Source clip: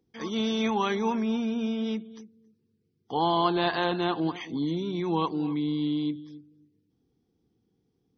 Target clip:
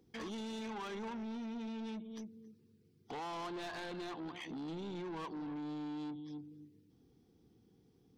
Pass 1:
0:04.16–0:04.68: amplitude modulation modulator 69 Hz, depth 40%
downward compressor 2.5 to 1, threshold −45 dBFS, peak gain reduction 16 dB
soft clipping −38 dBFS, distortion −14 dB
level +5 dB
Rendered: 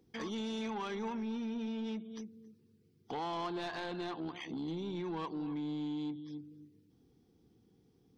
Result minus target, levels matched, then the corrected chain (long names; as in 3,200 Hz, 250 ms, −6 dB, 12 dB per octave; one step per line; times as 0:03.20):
soft clipping: distortion −6 dB
0:04.16–0:04.68: amplitude modulation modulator 69 Hz, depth 40%
downward compressor 2.5 to 1, threshold −45 dBFS, peak gain reduction 16 dB
soft clipping −45 dBFS, distortion −8 dB
level +5 dB